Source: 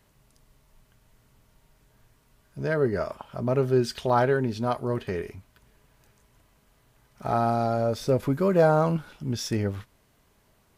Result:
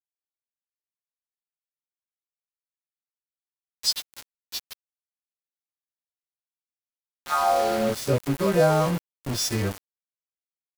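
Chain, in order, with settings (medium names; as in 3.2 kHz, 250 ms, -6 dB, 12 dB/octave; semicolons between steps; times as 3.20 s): partials quantised in pitch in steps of 2 st; high-pass sweep 4 kHz -> 60 Hz, 7.01–8.21 s; small samples zeroed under -27.5 dBFS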